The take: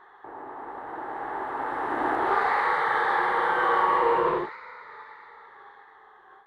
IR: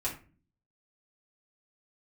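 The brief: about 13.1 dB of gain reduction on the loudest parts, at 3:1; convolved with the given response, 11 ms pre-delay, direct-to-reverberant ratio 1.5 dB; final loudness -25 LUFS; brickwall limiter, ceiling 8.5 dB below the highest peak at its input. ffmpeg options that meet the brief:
-filter_complex "[0:a]acompressor=threshold=-37dB:ratio=3,alimiter=level_in=8.5dB:limit=-24dB:level=0:latency=1,volume=-8.5dB,asplit=2[a][b];[1:a]atrim=start_sample=2205,adelay=11[c];[b][c]afir=irnorm=-1:irlink=0,volume=-6dB[d];[a][d]amix=inputs=2:normalize=0,volume=14.5dB"

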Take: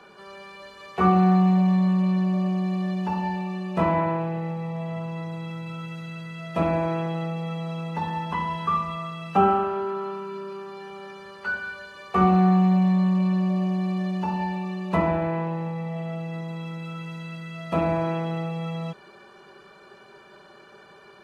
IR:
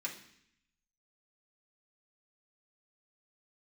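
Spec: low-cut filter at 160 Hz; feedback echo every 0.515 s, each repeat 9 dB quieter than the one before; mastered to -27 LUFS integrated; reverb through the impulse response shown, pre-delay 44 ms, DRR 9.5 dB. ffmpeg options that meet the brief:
-filter_complex "[0:a]highpass=160,aecho=1:1:515|1030|1545|2060:0.355|0.124|0.0435|0.0152,asplit=2[a][b];[1:a]atrim=start_sample=2205,adelay=44[c];[b][c]afir=irnorm=-1:irlink=0,volume=-10.5dB[d];[a][d]amix=inputs=2:normalize=0,volume=-1dB"

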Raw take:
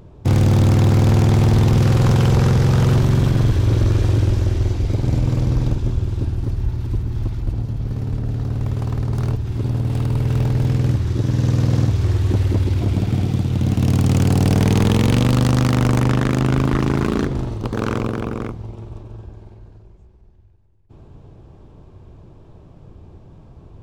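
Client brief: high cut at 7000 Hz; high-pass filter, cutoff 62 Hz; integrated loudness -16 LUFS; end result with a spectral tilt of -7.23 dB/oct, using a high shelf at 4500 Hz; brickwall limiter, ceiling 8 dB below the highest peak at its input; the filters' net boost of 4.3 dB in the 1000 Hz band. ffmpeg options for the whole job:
-af "highpass=62,lowpass=7k,equalizer=f=1k:t=o:g=5,highshelf=f=4.5k:g=6.5,volume=5.5dB,alimiter=limit=-6dB:level=0:latency=1"

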